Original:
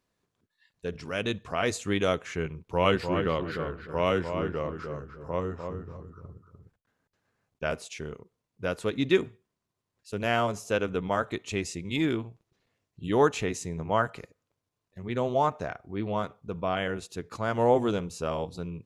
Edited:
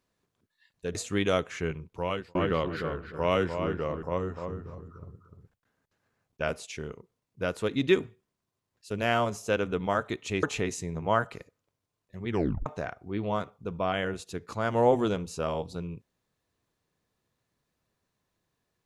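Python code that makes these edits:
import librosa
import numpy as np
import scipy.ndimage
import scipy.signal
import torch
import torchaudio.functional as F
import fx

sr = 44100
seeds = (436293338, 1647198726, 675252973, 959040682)

y = fx.edit(x, sr, fx.cut(start_s=0.95, length_s=0.75),
    fx.fade_out_span(start_s=2.5, length_s=0.6),
    fx.cut(start_s=4.78, length_s=0.47),
    fx.cut(start_s=11.65, length_s=1.61),
    fx.tape_stop(start_s=15.12, length_s=0.37), tone=tone)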